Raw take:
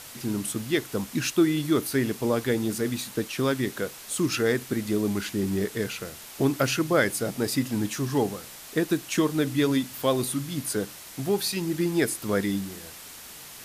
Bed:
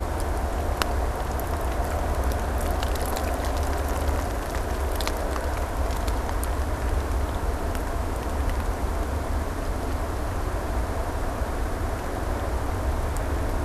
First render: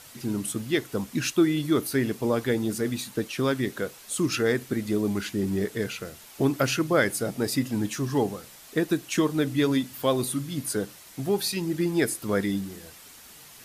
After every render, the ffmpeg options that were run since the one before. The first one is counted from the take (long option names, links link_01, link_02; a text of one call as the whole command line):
ffmpeg -i in.wav -af "afftdn=noise_reduction=6:noise_floor=-44" out.wav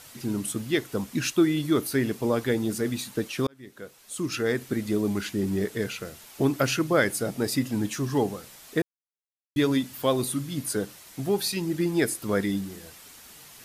ffmpeg -i in.wav -filter_complex "[0:a]asplit=4[link_01][link_02][link_03][link_04];[link_01]atrim=end=3.47,asetpts=PTS-STARTPTS,afade=type=out:start_time=3.466:duration=0.004:curve=hsin[link_05];[link_02]atrim=start=3.47:end=8.82,asetpts=PTS-STARTPTS,afade=type=in:duration=1.28,afade=type=out:start_time=5.346:duration=0.004:curve=hsin[link_06];[link_03]atrim=start=8.82:end=9.56,asetpts=PTS-STARTPTS,volume=0[link_07];[link_04]atrim=start=9.56,asetpts=PTS-STARTPTS,afade=type=in:duration=0.004:curve=hsin[link_08];[link_05][link_06][link_07][link_08]concat=n=4:v=0:a=1" out.wav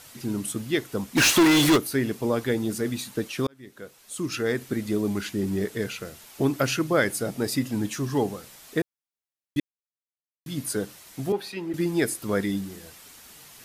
ffmpeg -i in.wav -filter_complex "[0:a]asplit=3[link_01][link_02][link_03];[link_01]afade=type=out:start_time=1.16:duration=0.02[link_04];[link_02]asplit=2[link_05][link_06];[link_06]highpass=frequency=720:poles=1,volume=32dB,asoftclip=type=tanh:threshold=-11dB[link_07];[link_05][link_07]amix=inputs=2:normalize=0,lowpass=frequency=7900:poles=1,volume=-6dB,afade=type=in:start_time=1.16:duration=0.02,afade=type=out:start_time=1.76:duration=0.02[link_08];[link_03]afade=type=in:start_time=1.76:duration=0.02[link_09];[link_04][link_08][link_09]amix=inputs=3:normalize=0,asettb=1/sr,asplit=3[link_10][link_11][link_12];[link_10]atrim=end=11.324[link_13];[link_11]atrim=start=11.32:end=11.74,asetpts=PTS-STARTPTS,afade=type=in:duration=0.004:curve=qsin,afade=type=out:start_time=0.416:duration=0.004:curve=qsin,acrossover=split=250 3100:gain=0.224 1 0.158[link_14][link_15][link_16];[link_14][link_15][link_16]amix=inputs=3:normalize=0[link_17];[link_12]atrim=start=11.736[link_18];[link_13][link_17]acrossfade=duration=0.004:curve1=hsin:curve2=qsin[link_19];[link_19][link_18]acrossfade=duration=0.004:curve1=qsin:curve2=hsin,asplit=3[link_20][link_21][link_22];[link_20]atrim=end=9.6,asetpts=PTS-STARTPTS,afade=type=out:start_time=9.596:duration=0.004:curve=hsin[link_23];[link_21]atrim=start=9.6:end=10.46,asetpts=PTS-STARTPTS,volume=0[link_24];[link_22]atrim=start=10.46,asetpts=PTS-STARTPTS,afade=type=in:duration=0.004:curve=hsin[link_25];[link_23][link_24][link_25]concat=n=3:v=0:a=1" out.wav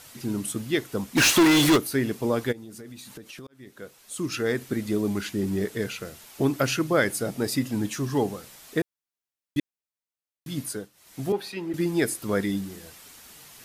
ffmpeg -i in.wav -filter_complex "[0:a]asplit=3[link_01][link_02][link_03];[link_01]afade=type=out:start_time=2.51:duration=0.02[link_04];[link_02]acompressor=threshold=-39dB:ratio=8:attack=3.2:release=140:knee=1:detection=peak,afade=type=in:start_time=2.51:duration=0.02,afade=type=out:start_time=3.73:duration=0.02[link_05];[link_03]afade=type=in:start_time=3.73:duration=0.02[link_06];[link_04][link_05][link_06]amix=inputs=3:normalize=0,asplit=3[link_07][link_08][link_09];[link_07]atrim=end=10.9,asetpts=PTS-STARTPTS,afade=type=out:start_time=10.59:duration=0.31:silence=0.141254[link_10];[link_08]atrim=start=10.9:end=10.93,asetpts=PTS-STARTPTS,volume=-17dB[link_11];[link_09]atrim=start=10.93,asetpts=PTS-STARTPTS,afade=type=in:duration=0.31:silence=0.141254[link_12];[link_10][link_11][link_12]concat=n=3:v=0:a=1" out.wav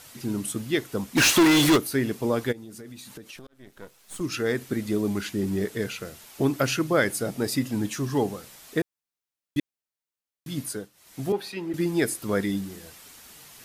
ffmpeg -i in.wav -filter_complex "[0:a]asettb=1/sr,asplit=3[link_01][link_02][link_03];[link_01]atrim=end=3.364[link_04];[link_02]atrim=start=3.36:end=4.21,asetpts=PTS-STARTPTS,afade=type=in:duration=0.004:curve=qsin,afade=type=out:start_time=0.846:duration=0.004:curve=qsin,aeval=exprs='if(lt(val(0),0),0.251*val(0),val(0))':channel_layout=same[link_05];[link_03]atrim=start=4.206[link_06];[link_04][link_05]acrossfade=duration=0.004:curve1=hsin:curve2=qsin[link_07];[link_07][link_06]acrossfade=duration=0.004:curve1=qsin:curve2=hsin" out.wav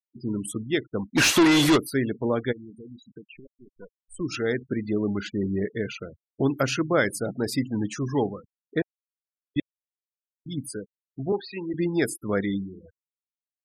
ffmpeg -i in.wav -af "afftfilt=real='re*gte(hypot(re,im),0.0224)':imag='im*gte(hypot(re,im),0.0224)':win_size=1024:overlap=0.75,highshelf=frequency=11000:gain=-8" out.wav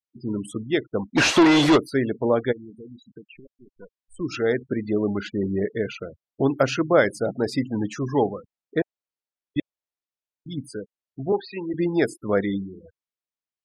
ffmpeg -i in.wav -af "lowpass=6200,adynamicequalizer=threshold=0.0112:dfrequency=650:dqfactor=0.93:tfrequency=650:tqfactor=0.93:attack=5:release=100:ratio=0.375:range=3.5:mode=boostabove:tftype=bell" out.wav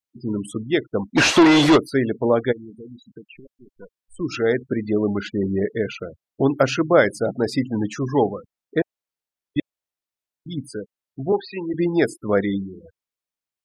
ffmpeg -i in.wav -af "volume=2.5dB" out.wav